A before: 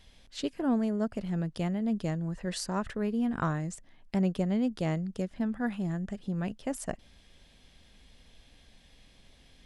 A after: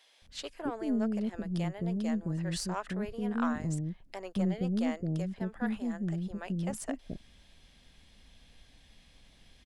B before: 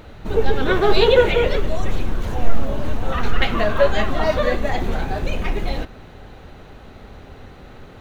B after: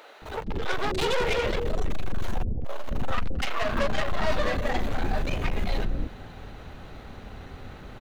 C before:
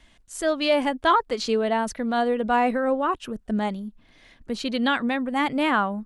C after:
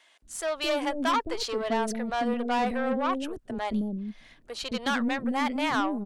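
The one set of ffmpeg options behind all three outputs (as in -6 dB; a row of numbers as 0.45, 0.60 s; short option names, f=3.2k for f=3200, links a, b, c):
-filter_complex "[0:a]aeval=exprs='(tanh(11.2*val(0)+0.3)-tanh(0.3))/11.2':c=same,acrossover=split=440[a][b];[a]adelay=220[c];[c][b]amix=inputs=2:normalize=0"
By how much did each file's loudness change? -2.0, -9.0, -5.0 LU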